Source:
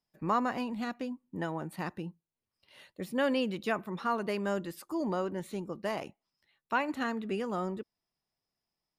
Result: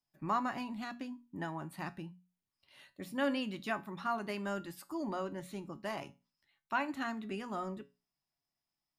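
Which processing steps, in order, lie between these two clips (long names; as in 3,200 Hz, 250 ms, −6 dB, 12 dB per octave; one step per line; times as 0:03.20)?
parametric band 470 Hz −14 dB 0.29 octaves
mains-hum notches 60/120/180/240 Hz
tuned comb filter 140 Hz, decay 0.27 s, harmonics all, mix 60%
level +2.5 dB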